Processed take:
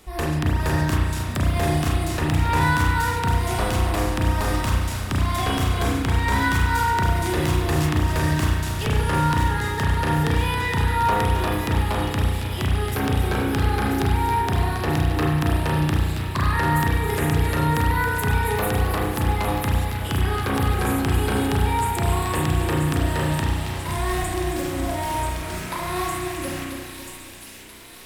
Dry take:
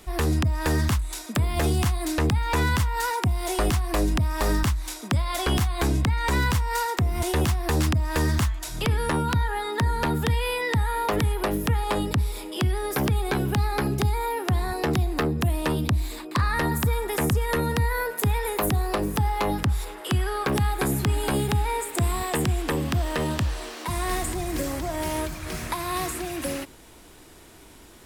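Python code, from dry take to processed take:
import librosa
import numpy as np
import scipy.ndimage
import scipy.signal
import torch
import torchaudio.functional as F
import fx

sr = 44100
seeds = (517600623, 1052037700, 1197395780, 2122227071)

y = fx.echo_wet_highpass(x, sr, ms=986, feedback_pct=62, hz=2800.0, wet_db=-5.5)
y = fx.rev_spring(y, sr, rt60_s=1.1, pass_ms=(33,), chirp_ms=60, drr_db=-3.0)
y = fx.echo_crushed(y, sr, ms=273, feedback_pct=55, bits=8, wet_db=-8.0)
y = F.gain(torch.from_numpy(y), -2.5).numpy()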